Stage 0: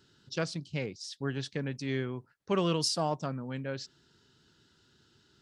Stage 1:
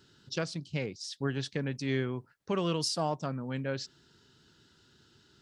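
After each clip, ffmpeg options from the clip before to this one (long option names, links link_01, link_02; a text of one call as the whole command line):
ffmpeg -i in.wav -af "alimiter=limit=-22dB:level=0:latency=1:release=484,volume=2.5dB" out.wav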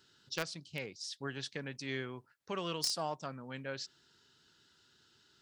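ffmpeg -i in.wav -filter_complex "[0:a]lowshelf=frequency=500:gain=-10.5,asplit=2[link_01][link_02];[link_02]acrusher=bits=3:mix=0:aa=0.000001,volume=-6dB[link_03];[link_01][link_03]amix=inputs=2:normalize=0,volume=-2dB" out.wav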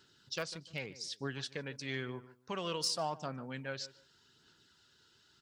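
ffmpeg -i in.wav -filter_complex "[0:a]asplit=2[link_01][link_02];[link_02]adelay=148,lowpass=frequency=1900:poles=1,volume=-16.5dB,asplit=2[link_03][link_04];[link_04]adelay=148,lowpass=frequency=1900:poles=1,volume=0.24[link_05];[link_01][link_03][link_05]amix=inputs=3:normalize=0,asoftclip=type=hard:threshold=-22.5dB,aphaser=in_gain=1:out_gain=1:delay=2.1:decay=0.29:speed=0.89:type=sinusoidal" out.wav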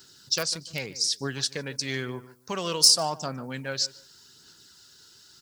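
ffmpeg -i in.wav -af "aexciter=amount=4:drive=4.3:freq=4400,volume=7.5dB" out.wav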